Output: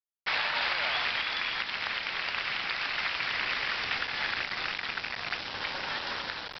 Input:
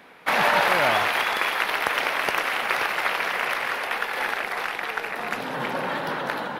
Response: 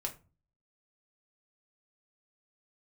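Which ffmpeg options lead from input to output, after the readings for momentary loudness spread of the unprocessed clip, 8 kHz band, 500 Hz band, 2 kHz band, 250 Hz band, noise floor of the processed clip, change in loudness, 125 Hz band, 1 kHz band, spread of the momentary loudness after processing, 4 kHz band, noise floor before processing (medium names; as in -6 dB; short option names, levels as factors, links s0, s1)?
9 LU, under -15 dB, -15.5 dB, -6.5 dB, -13.0 dB, -42 dBFS, -6.5 dB, -9.5 dB, -11.5 dB, 6 LU, -1.0 dB, -33 dBFS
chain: -af "aderivative,aresample=11025,acrusher=bits=6:mix=0:aa=0.000001,aresample=44100,alimiter=level_in=1.19:limit=0.0631:level=0:latency=1:release=428,volume=0.841,volume=2.37"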